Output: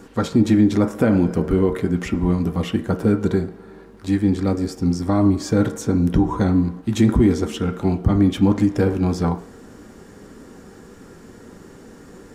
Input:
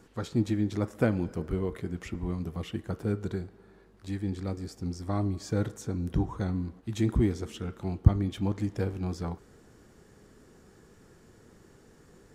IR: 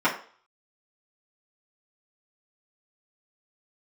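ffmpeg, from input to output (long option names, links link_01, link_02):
-filter_complex "[0:a]asplit=2[link_01][link_02];[1:a]atrim=start_sample=2205,lowshelf=frequency=480:gain=5.5[link_03];[link_02][link_03]afir=irnorm=-1:irlink=0,volume=-21dB[link_04];[link_01][link_04]amix=inputs=2:normalize=0,alimiter=level_in=17dB:limit=-1dB:release=50:level=0:latency=1,volume=-6dB"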